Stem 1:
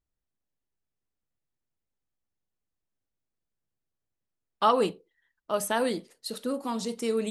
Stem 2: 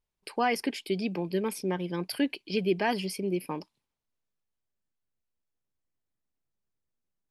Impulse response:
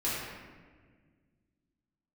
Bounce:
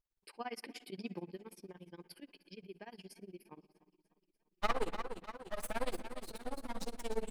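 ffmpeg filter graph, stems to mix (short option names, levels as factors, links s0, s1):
-filter_complex "[0:a]aeval=exprs='max(val(0),0)':c=same,volume=0.562,asplit=3[s0][s1][s2];[s1]volume=0.15[s3];[s2]volume=0.398[s4];[1:a]acompressor=threshold=0.0398:ratio=6,volume=0.422,afade=t=out:st=1.19:d=0.23:silence=0.398107,asplit=3[s5][s6][s7];[s6]volume=0.0794[s8];[s7]volume=0.0794[s9];[2:a]atrim=start_sample=2205[s10];[s3][s8]amix=inputs=2:normalize=0[s11];[s11][s10]afir=irnorm=-1:irlink=0[s12];[s4][s9]amix=inputs=2:normalize=0,aecho=0:1:310|620|930|1240|1550|1860|2170|2480|2790|3100:1|0.6|0.36|0.216|0.13|0.0778|0.0467|0.028|0.0168|0.0101[s13];[s0][s5][s12][s13]amix=inputs=4:normalize=0,tremolo=f=17:d=0.96"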